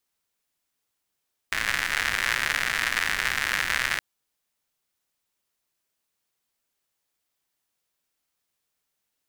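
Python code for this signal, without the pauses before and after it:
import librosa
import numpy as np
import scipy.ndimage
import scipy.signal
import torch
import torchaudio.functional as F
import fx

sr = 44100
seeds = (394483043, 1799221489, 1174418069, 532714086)

y = fx.rain(sr, seeds[0], length_s=2.47, drops_per_s=140.0, hz=1800.0, bed_db=-14.0)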